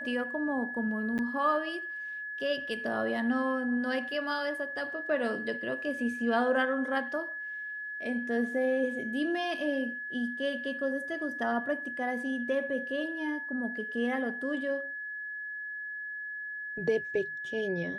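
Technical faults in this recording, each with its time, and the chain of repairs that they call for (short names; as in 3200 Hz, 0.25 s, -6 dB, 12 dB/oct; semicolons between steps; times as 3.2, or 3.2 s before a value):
tone 1700 Hz -36 dBFS
1.18–1.19 gap 8.7 ms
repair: notch 1700 Hz, Q 30; interpolate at 1.18, 8.7 ms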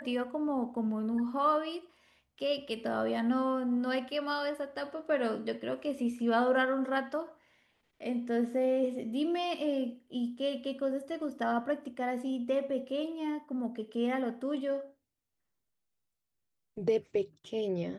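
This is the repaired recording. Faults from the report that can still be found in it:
none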